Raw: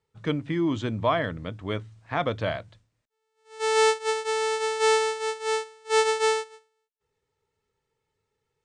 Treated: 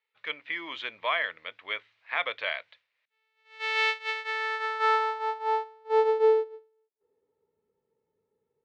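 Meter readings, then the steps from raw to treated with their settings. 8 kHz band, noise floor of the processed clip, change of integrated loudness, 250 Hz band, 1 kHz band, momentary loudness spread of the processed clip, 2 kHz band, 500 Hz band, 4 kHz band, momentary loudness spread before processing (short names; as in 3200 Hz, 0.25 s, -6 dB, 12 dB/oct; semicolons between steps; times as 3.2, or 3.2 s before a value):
under -20 dB, -82 dBFS, -2.5 dB, under -20 dB, -1.5 dB, 12 LU, +1.5 dB, -3.5 dB, -3.5 dB, 11 LU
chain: graphic EQ 125/250/500/1000/2000/4000/8000 Hz -6/-3/+10/+6/+5/+10/-5 dB; AGC gain up to 10.5 dB; band-pass sweep 2300 Hz -> 210 Hz, 4.07–7.55; gain -2.5 dB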